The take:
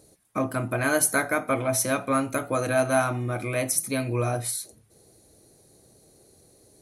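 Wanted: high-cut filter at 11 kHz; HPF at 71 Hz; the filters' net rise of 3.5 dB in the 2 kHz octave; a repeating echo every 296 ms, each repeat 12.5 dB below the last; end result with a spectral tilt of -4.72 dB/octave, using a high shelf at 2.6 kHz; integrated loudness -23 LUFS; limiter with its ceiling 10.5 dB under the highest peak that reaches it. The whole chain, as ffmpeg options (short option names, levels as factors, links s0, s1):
-af "highpass=71,lowpass=11000,equalizer=f=2000:t=o:g=7,highshelf=f=2600:g=-4.5,alimiter=limit=0.112:level=0:latency=1,aecho=1:1:296|592|888:0.237|0.0569|0.0137,volume=2"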